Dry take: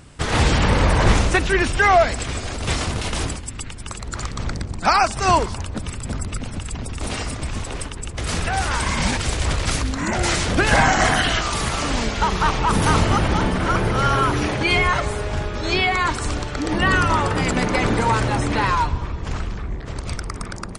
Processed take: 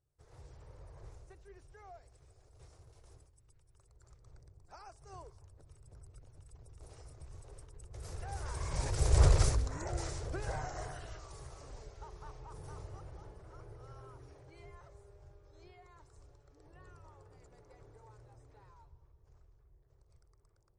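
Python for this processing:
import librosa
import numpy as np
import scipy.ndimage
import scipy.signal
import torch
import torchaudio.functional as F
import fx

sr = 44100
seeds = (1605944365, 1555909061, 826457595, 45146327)

y = fx.doppler_pass(x, sr, speed_mps=10, closest_m=1.5, pass_at_s=9.27)
y = fx.curve_eq(y, sr, hz=(140.0, 210.0, 400.0, 3100.0, 5500.0), db=(0, -22, 0, -17, -6))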